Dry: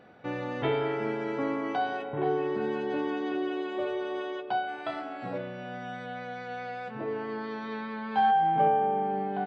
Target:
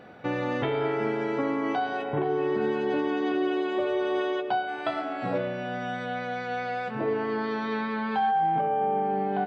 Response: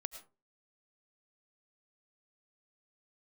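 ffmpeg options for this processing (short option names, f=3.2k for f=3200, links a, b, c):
-filter_complex "[0:a]alimiter=level_in=0.5dB:limit=-24dB:level=0:latency=1:release=354,volume=-0.5dB,asplit=2[a][b];[1:a]atrim=start_sample=2205[c];[b][c]afir=irnorm=-1:irlink=0,volume=3.5dB[d];[a][d]amix=inputs=2:normalize=0"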